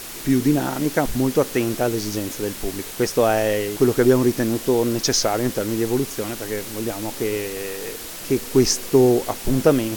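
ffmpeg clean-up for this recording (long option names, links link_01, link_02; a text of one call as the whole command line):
ffmpeg -i in.wav -af "afwtdn=0.02" out.wav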